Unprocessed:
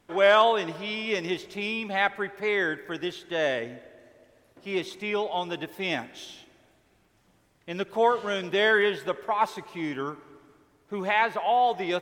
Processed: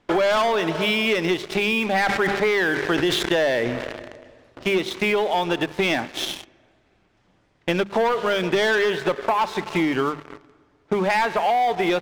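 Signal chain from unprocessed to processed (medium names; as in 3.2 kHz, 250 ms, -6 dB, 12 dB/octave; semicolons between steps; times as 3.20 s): low-pass 4.8 kHz 12 dB/octave; waveshaping leveller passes 3; compression 10:1, threshold -27 dBFS, peak gain reduction 15.5 dB; hum notches 50/100/150/200 Hz; 1.88–4.69 s: decay stretcher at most 38 dB/s; trim +8.5 dB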